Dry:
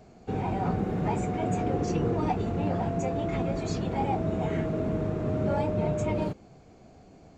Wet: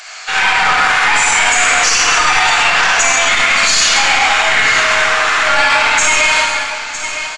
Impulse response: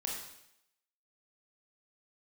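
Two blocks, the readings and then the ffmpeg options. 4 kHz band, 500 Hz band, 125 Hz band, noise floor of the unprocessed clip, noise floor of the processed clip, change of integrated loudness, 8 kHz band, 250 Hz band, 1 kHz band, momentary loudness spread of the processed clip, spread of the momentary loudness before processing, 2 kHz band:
+36.5 dB, +6.5 dB, -8.0 dB, -54 dBFS, -24 dBFS, +19.0 dB, +35.5 dB, -5.0 dB, +19.5 dB, 5 LU, 3 LU, +36.0 dB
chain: -filter_complex "[0:a]highpass=f=1400:w=0.5412,highpass=f=1400:w=1.3066,aeval=exprs='0.0299*(cos(1*acos(clip(val(0)/0.0299,-1,1)))-cos(1*PI/2))+0.00944*(cos(2*acos(clip(val(0)/0.0299,-1,1)))-cos(2*PI/2))+0.00668*(cos(4*acos(clip(val(0)/0.0299,-1,1)))-cos(4*PI/2))':c=same,aecho=1:1:956:0.178[s0];[1:a]atrim=start_sample=2205,asetrate=25578,aresample=44100[s1];[s0][s1]afir=irnorm=-1:irlink=0,aresample=22050,aresample=44100,alimiter=level_in=56.2:limit=0.891:release=50:level=0:latency=1,volume=0.891"

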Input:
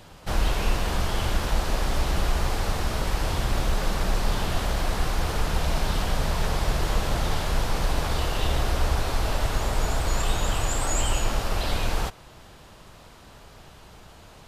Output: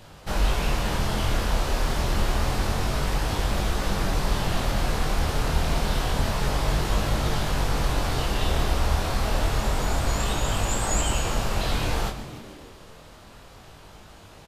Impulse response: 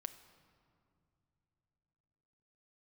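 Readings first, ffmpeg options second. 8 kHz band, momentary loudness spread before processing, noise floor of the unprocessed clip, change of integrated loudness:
+1.0 dB, 2 LU, -49 dBFS, +1.0 dB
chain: -filter_complex "[0:a]asplit=9[s0][s1][s2][s3][s4][s5][s6][s7][s8];[s1]adelay=147,afreqshift=-80,volume=0.237[s9];[s2]adelay=294,afreqshift=-160,volume=0.151[s10];[s3]adelay=441,afreqshift=-240,volume=0.0966[s11];[s4]adelay=588,afreqshift=-320,volume=0.0624[s12];[s5]adelay=735,afreqshift=-400,volume=0.0398[s13];[s6]adelay=882,afreqshift=-480,volume=0.0254[s14];[s7]adelay=1029,afreqshift=-560,volume=0.0162[s15];[s8]adelay=1176,afreqshift=-640,volume=0.0105[s16];[s0][s9][s10][s11][s12][s13][s14][s15][s16]amix=inputs=9:normalize=0,flanger=delay=19.5:depth=6.2:speed=0.28,volume=1.5"

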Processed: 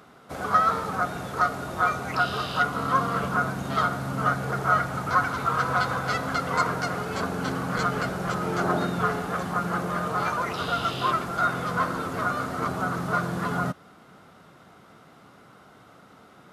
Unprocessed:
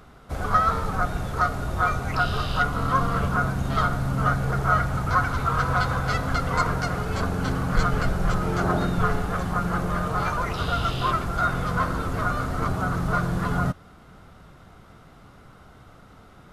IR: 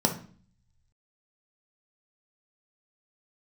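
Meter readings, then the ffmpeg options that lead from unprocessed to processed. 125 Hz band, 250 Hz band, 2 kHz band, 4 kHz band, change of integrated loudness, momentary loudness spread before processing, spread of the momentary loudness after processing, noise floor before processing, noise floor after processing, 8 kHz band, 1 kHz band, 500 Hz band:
-7.0 dB, -2.5 dB, 0.0 dB, 0.0 dB, -1.5 dB, 4 LU, 5 LU, -50 dBFS, -53 dBFS, 0.0 dB, 0.0 dB, 0.0 dB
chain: -af "highpass=180"

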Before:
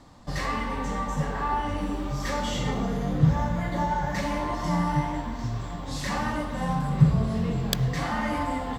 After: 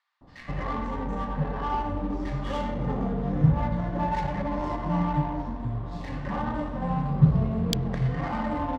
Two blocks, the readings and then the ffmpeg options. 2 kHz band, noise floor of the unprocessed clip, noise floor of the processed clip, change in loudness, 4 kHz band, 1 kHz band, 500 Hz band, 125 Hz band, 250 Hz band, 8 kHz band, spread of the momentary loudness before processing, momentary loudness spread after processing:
-6.0 dB, -35 dBFS, -45 dBFS, -0.5 dB, -5.5 dB, -1.5 dB, -0.5 dB, 0.0 dB, 0.0 dB, no reading, 9 LU, 10 LU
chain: -filter_complex "[0:a]acrossover=split=1800[s0][s1];[s0]adelay=210[s2];[s2][s1]amix=inputs=2:normalize=0,adynamicsmooth=sensitivity=2:basefreq=1300"

